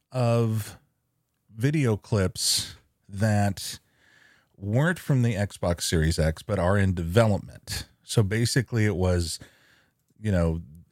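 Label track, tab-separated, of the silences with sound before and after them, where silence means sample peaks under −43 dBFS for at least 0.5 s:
0.760000	1.550000	silence
3.770000	4.580000	silence
9.470000	10.220000	silence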